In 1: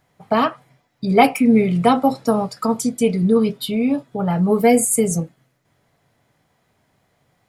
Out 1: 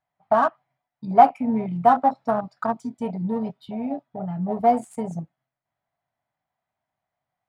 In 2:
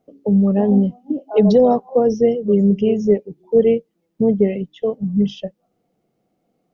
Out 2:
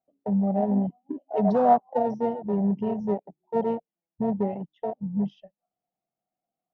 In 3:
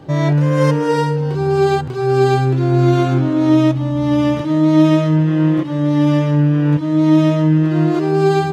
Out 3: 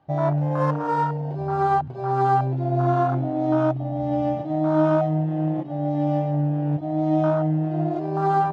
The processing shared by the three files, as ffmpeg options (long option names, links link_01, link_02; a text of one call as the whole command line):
ffmpeg -i in.wav -af "afwtdn=0.141,adynamicsmooth=sensitivity=5:basefreq=4100,lowshelf=frequency=560:width_type=q:width=3:gain=-6,volume=-2.5dB" out.wav